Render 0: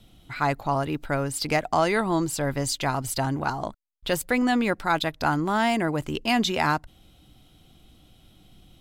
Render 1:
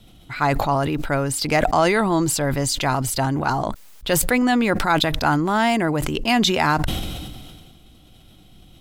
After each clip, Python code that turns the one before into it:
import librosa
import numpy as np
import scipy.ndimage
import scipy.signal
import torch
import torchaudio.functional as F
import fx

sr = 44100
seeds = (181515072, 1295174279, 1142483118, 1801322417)

y = fx.sustainer(x, sr, db_per_s=30.0)
y = F.gain(torch.from_numpy(y), 4.0).numpy()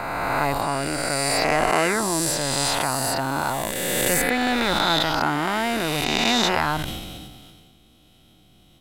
y = fx.spec_swells(x, sr, rise_s=2.66)
y = fx.low_shelf(y, sr, hz=89.0, db=-8.0)
y = F.gain(torch.from_numpy(y), -7.0).numpy()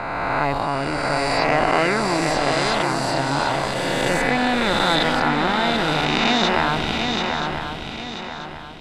y = scipy.signal.sosfilt(scipy.signal.butter(2, 4400.0, 'lowpass', fs=sr, output='sos'), x)
y = fx.echo_swing(y, sr, ms=984, ratio=3, feedback_pct=38, wet_db=-5)
y = F.gain(torch.from_numpy(y), 1.5).numpy()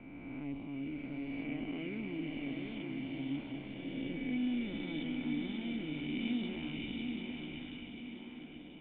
y = fx.formant_cascade(x, sr, vowel='i')
y = fx.echo_stepped(y, sr, ms=543, hz=2800.0, octaves=-0.7, feedback_pct=70, wet_db=-1.0)
y = F.gain(torch.from_numpy(y), -8.0).numpy()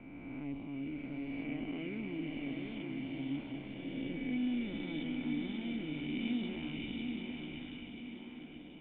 y = fx.air_absorb(x, sr, metres=53.0)